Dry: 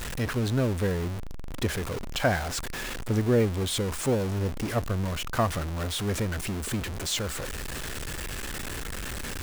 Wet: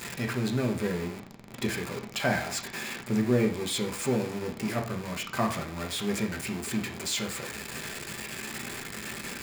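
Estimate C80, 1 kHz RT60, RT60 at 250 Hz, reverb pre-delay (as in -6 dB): 14.5 dB, 0.45 s, 0.50 s, 3 ms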